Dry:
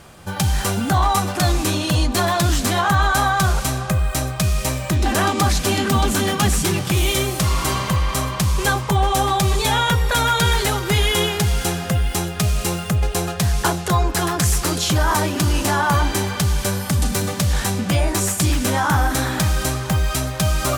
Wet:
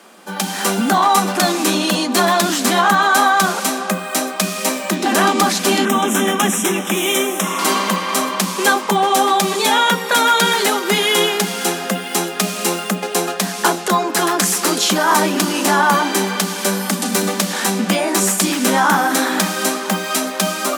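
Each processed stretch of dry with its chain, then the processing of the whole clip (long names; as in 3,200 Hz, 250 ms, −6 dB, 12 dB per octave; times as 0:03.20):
0:05.85–0:07.59: Butterworth band-reject 4,500 Hz, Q 2.4 + tuned comb filter 53 Hz, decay 0.24 s, mix 30%
whole clip: Chebyshev high-pass filter 180 Hz, order 10; automatic gain control gain up to 5.5 dB; level +1.5 dB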